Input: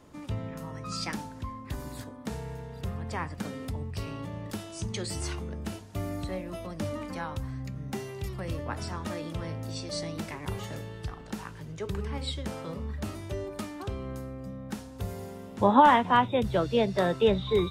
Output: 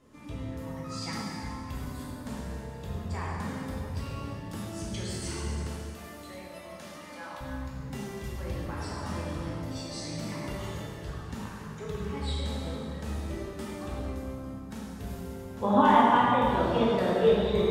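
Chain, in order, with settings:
spectral magnitudes quantised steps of 15 dB
0:05.67–0:07.41: high-pass filter 910 Hz 6 dB per octave
dense smooth reverb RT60 2.7 s, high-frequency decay 0.75×, DRR −6.5 dB
level −7 dB

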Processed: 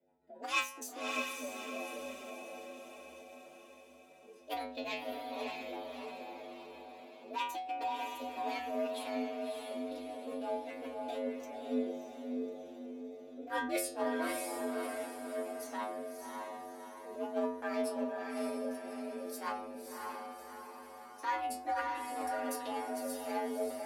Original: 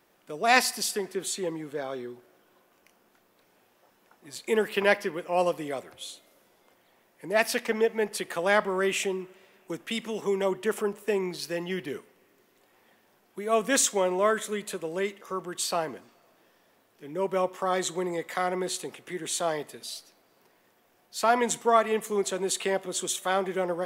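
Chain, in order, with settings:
adaptive Wiener filter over 41 samples
stiff-string resonator 92 Hz, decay 0.58 s, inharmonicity 0.002
rotating-speaker cabinet horn 6.7 Hz, later 0.6 Hz, at 0:00.34
formants moved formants +5 semitones
on a send: feedback delay with all-pass diffusion 604 ms, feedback 44%, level −3 dB
on the sum: frequency shifter +68 Hz
parametric band 210 Hz +5 dB 2 octaves
in parallel at +2 dB: brickwall limiter −53.5 dBFS, peak gain reduction 33 dB
on the sum: level +1 dB

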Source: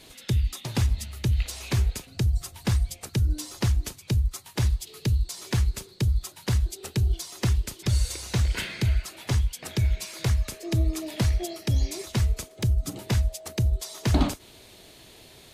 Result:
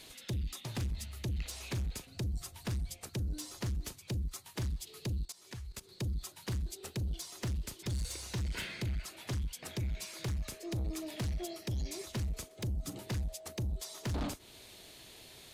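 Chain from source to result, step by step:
0:05.25–0:05.89: output level in coarse steps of 18 dB
soft clipping −25 dBFS, distortion −10 dB
one half of a high-frequency compander encoder only
level −6.5 dB

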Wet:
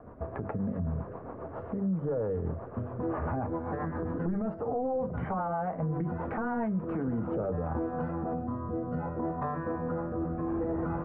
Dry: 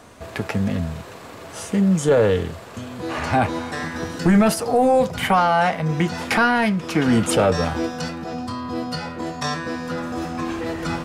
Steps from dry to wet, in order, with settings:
rotating-speaker cabinet horn 7.5 Hz, later 0.65 Hz, at 0:06.59
downward compressor, threshold −24 dBFS, peak gain reduction 10.5 dB
low-pass filter 1,200 Hz 24 dB per octave
low-shelf EQ 73 Hz +6 dB
mains-hum notches 50/100/150/200/250/300/350 Hz
brickwall limiter −24 dBFS, peak gain reduction 8.5 dB

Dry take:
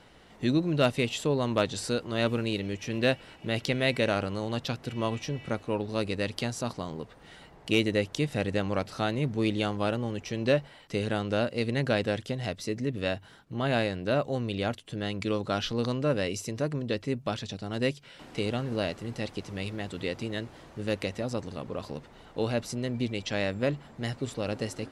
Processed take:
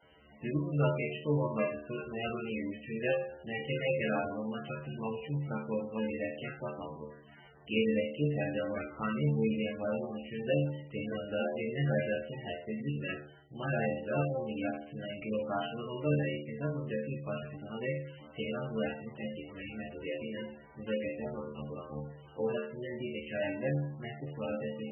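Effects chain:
high-pass filter 45 Hz 24 dB per octave
stiff-string resonator 72 Hz, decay 0.74 s, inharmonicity 0.002
level +7.5 dB
MP3 8 kbit/s 22,050 Hz

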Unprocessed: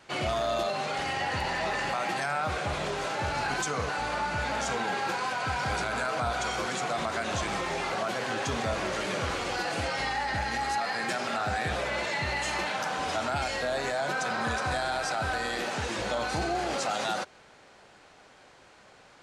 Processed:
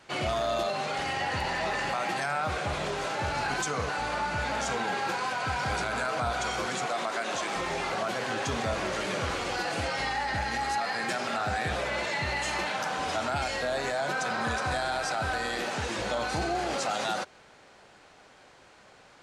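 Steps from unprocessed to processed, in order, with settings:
0:06.86–0:07.56: high-pass filter 280 Hz 12 dB per octave

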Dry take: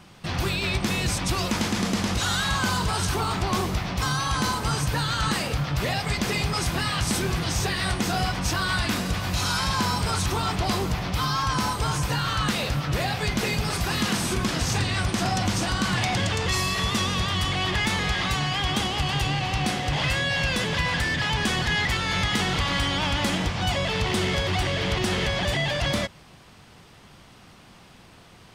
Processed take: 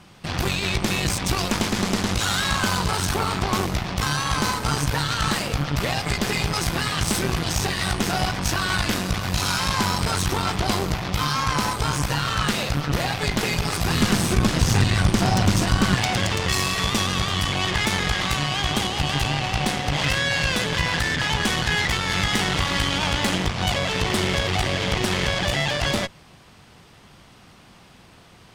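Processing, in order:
harmonic generator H 3 −14 dB, 4 −16 dB, 5 −28 dB, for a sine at −13 dBFS
0:13.84–0:15.95: low-shelf EQ 290 Hz +7 dB
level +5 dB

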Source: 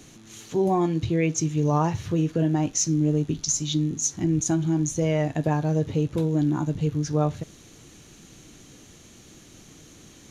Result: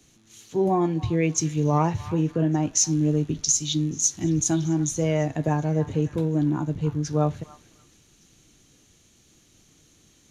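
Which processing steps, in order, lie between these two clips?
echo through a band-pass that steps 291 ms, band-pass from 1,200 Hz, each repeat 0.7 octaves, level −11.5 dB
multiband upward and downward expander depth 40%

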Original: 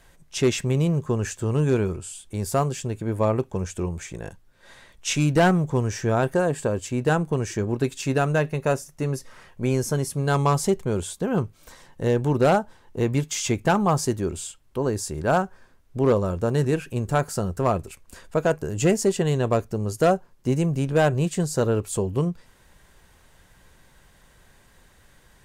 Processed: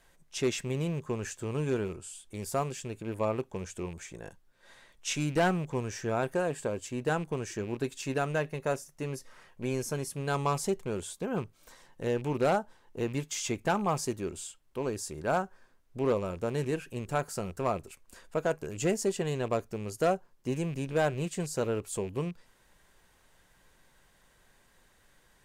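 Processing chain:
loose part that buzzes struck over −25 dBFS, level −33 dBFS
parametric band 70 Hz −7 dB 2.6 octaves
level −7 dB

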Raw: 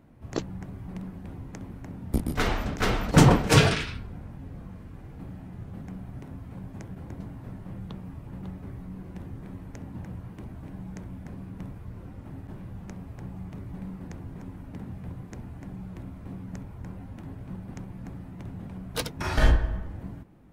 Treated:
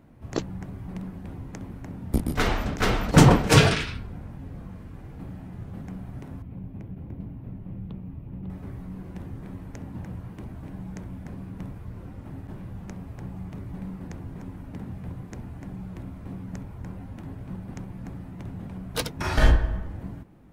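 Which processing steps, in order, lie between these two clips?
0:06.42–0:08.50: drawn EQ curve 220 Hz 0 dB, 1,700 Hz −12 dB, 2,500 Hz −6 dB, 7,500 Hz −25 dB, 13,000 Hz −8 dB
level +2 dB

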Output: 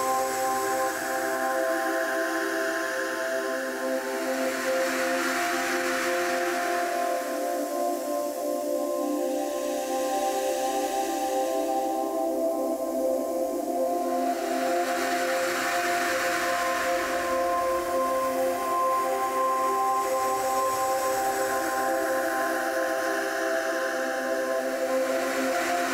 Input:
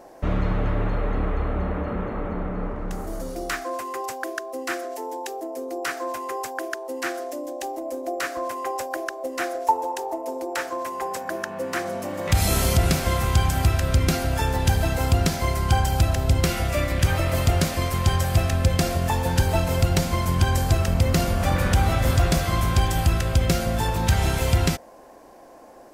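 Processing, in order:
extreme stretch with random phases 8.8×, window 0.50 s, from 0:06.42
brickwall limiter −21 dBFS, peak gain reduction 5.5 dB
level +4 dB

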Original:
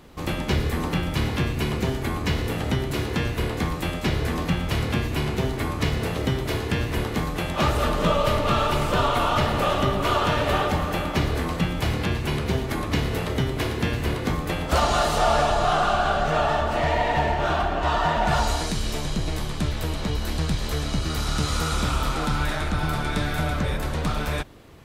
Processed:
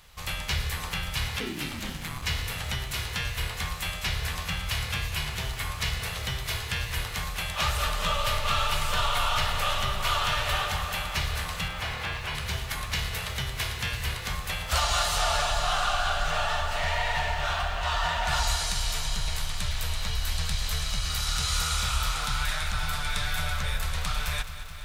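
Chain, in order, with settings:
guitar amp tone stack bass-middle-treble 10-0-10
0:01.39–0:02.21: ring modulation 370 Hz → 59 Hz
0:11.68–0:12.35: mid-hump overdrive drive 14 dB, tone 1,000 Hz, clips at −18.5 dBFS
feedback echo at a low word length 214 ms, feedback 80%, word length 9 bits, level −14 dB
level +3.5 dB

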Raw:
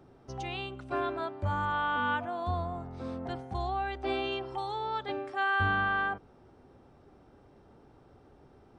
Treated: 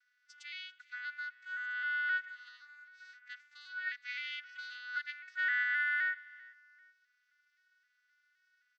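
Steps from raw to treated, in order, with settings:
vocoder with an arpeggio as carrier minor triad, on B3, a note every 261 ms
0:02.67–0:05.29: dynamic equaliser 2,000 Hz, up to +5 dB, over −55 dBFS, Q 1.8
Chebyshev high-pass with heavy ripple 1,400 Hz, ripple 6 dB
repeating echo 392 ms, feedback 32%, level −21.5 dB
level +6.5 dB

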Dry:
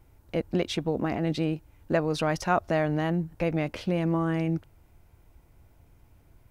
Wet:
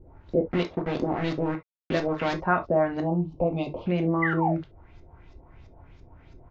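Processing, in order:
0:03.00–0:03.86: Chebyshev band-stop filter 1,000–2,900 Hz, order 2
downward compressor 2 to 1, threshold −37 dBFS, peak gain reduction 10.5 dB
0:00.52–0:02.36: centre clipping without the shift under −36.5 dBFS
0:04.22–0:04.53: sound drawn into the spectrogram fall 580–2,100 Hz −37 dBFS
auto-filter low-pass saw up 3 Hz 350–5,600 Hz
on a send at −3.5 dB: convolution reverb, pre-delay 3 ms
on the sum: downsampling to 16,000 Hz
level +5.5 dB

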